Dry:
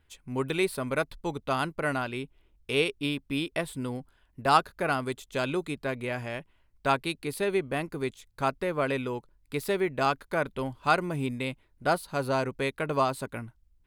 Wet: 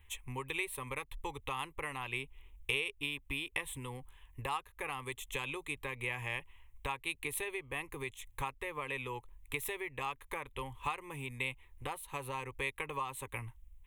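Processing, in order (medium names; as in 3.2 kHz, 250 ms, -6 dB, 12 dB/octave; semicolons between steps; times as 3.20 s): compression 12:1, threshold -36 dBFS, peak gain reduction 21 dB; peaking EQ 330 Hz -14 dB 1.9 oct; static phaser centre 970 Hz, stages 8; trim +10 dB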